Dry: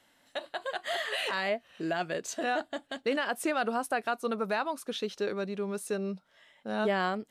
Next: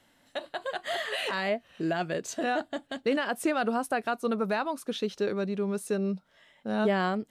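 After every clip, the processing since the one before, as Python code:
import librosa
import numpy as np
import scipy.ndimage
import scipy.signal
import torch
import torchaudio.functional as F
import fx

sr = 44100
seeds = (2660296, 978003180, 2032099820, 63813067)

y = fx.low_shelf(x, sr, hz=310.0, db=8.0)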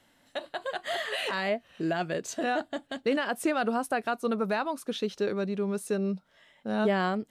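y = x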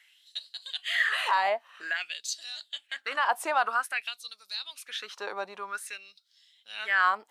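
y = fx.filter_lfo_highpass(x, sr, shape='sine', hz=0.51, low_hz=850.0, high_hz=4600.0, q=4.7)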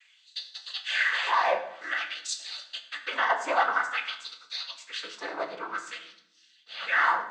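y = fx.noise_vocoder(x, sr, seeds[0], bands=16)
y = fx.rev_fdn(y, sr, rt60_s=0.74, lf_ratio=1.6, hf_ratio=0.75, size_ms=61.0, drr_db=3.0)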